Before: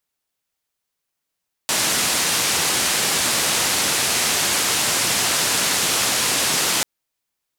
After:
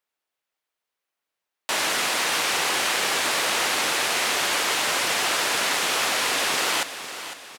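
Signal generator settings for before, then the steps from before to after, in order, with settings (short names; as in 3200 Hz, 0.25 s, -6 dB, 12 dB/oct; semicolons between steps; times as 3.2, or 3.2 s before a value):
noise band 100–9500 Hz, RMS -20 dBFS 5.14 s
tone controls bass -14 dB, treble -9 dB; on a send: feedback echo 0.504 s, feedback 44%, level -12 dB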